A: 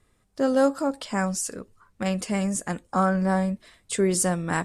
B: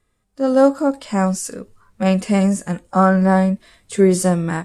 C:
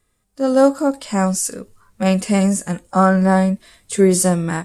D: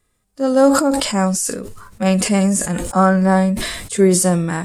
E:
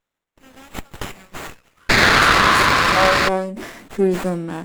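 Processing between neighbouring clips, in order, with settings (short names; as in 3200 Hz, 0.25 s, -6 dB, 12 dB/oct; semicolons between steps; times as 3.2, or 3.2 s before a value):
harmonic-percussive split percussive -12 dB; AGC gain up to 11.5 dB
high shelf 5400 Hz +8.5 dB
sustainer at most 45 dB/s
painted sound noise, 1.89–3.29, 980–2900 Hz -8 dBFS; high-pass sweep 4000 Hz -> 250 Hz, 1.21–3.75; running maximum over 9 samples; gain -7.5 dB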